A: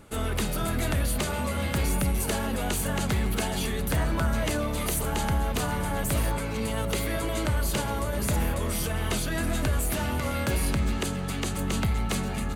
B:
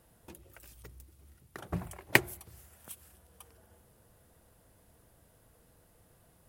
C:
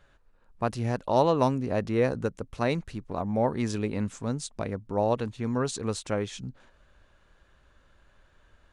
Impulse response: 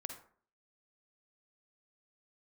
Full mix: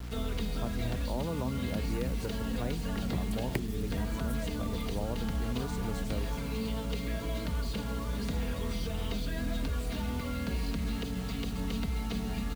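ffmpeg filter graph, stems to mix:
-filter_complex "[0:a]aecho=1:1:4.3:0.76,aeval=exprs='val(0)+0.0224*(sin(2*PI*60*n/s)+sin(2*PI*2*60*n/s)/2+sin(2*PI*3*60*n/s)/3+sin(2*PI*4*60*n/s)/4+sin(2*PI*5*60*n/s)/5)':channel_layout=same,lowpass=frequency=4300:width_type=q:width=2,volume=-10dB,asplit=2[link_01][link_02];[link_02]volume=-7.5dB[link_03];[1:a]adelay=1400,volume=3dB[link_04];[2:a]volume=-7dB[link_05];[3:a]atrim=start_sample=2205[link_06];[link_03][link_06]afir=irnorm=-1:irlink=0[link_07];[link_01][link_04][link_05][link_07]amix=inputs=4:normalize=0,lowshelf=frequency=310:gain=2.5,acrossover=split=280|570[link_08][link_09][link_10];[link_08]acompressor=threshold=-30dB:ratio=4[link_11];[link_09]acompressor=threshold=-41dB:ratio=4[link_12];[link_10]acompressor=threshold=-43dB:ratio=4[link_13];[link_11][link_12][link_13]amix=inputs=3:normalize=0,acrusher=bits=7:mix=0:aa=0.000001"

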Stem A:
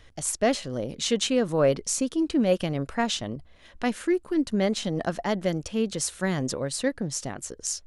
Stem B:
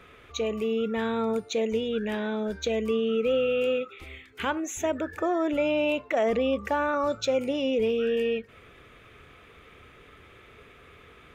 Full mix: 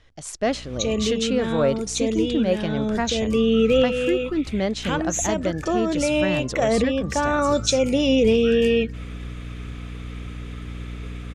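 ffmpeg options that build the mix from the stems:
ffmpeg -i stem1.wav -i stem2.wav -filter_complex "[0:a]volume=-3.5dB,asplit=2[link_01][link_02];[1:a]bass=frequency=250:gain=9,treble=frequency=4000:gain=14,aeval=exprs='val(0)+0.0126*(sin(2*PI*60*n/s)+sin(2*PI*2*60*n/s)/2+sin(2*PI*3*60*n/s)/3+sin(2*PI*4*60*n/s)/4+sin(2*PI*5*60*n/s)/5)':channel_layout=same,adelay=450,volume=2dB[link_03];[link_02]apad=whole_len=519949[link_04];[link_03][link_04]sidechaincompress=threshold=-29dB:ratio=8:attack=16:release=881[link_05];[link_01][link_05]amix=inputs=2:normalize=0,lowpass=7000,dynaudnorm=framelen=120:gausssize=5:maxgain=4dB" out.wav

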